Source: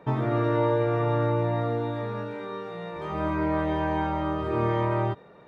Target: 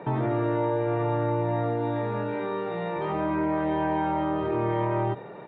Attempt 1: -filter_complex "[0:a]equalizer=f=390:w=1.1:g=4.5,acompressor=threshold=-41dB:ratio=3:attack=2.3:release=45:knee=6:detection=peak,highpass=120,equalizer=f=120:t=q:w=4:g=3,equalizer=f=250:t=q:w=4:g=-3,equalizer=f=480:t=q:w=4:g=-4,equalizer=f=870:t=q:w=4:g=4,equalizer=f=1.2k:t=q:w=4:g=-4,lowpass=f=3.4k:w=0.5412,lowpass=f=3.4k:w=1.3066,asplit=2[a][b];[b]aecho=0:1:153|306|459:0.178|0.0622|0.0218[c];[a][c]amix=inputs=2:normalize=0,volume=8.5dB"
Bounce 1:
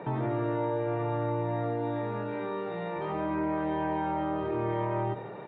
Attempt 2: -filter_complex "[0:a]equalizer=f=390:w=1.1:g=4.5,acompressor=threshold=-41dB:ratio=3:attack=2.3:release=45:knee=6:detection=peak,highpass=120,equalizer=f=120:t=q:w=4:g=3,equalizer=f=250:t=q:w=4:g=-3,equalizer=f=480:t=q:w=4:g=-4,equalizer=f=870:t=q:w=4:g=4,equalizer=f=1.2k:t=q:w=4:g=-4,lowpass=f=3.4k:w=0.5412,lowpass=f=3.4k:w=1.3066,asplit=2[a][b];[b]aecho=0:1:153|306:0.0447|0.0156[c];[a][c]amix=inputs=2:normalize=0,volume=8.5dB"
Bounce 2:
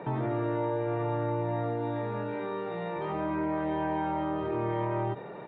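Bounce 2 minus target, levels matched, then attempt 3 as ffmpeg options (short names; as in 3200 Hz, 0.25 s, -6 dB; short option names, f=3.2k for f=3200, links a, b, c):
compressor: peak gain reduction +4.5 dB
-filter_complex "[0:a]equalizer=f=390:w=1.1:g=4.5,acompressor=threshold=-34.5dB:ratio=3:attack=2.3:release=45:knee=6:detection=peak,highpass=120,equalizer=f=120:t=q:w=4:g=3,equalizer=f=250:t=q:w=4:g=-3,equalizer=f=480:t=q:w=4:g=-4,equalizer=f=870:t=q:w=4:g=4,equalizer=f=1.2k:t=q:w=4:g=-4,lowpass=f=3.4k:w=0.5412,lowpass=f=3.4k:w=1.3066,asplit=2[a][b];[b]aecho=0:1:153|306:0.0447|0.0156[c];[a][c]amix=inputs=2:normalize=0,volume=8.5dB"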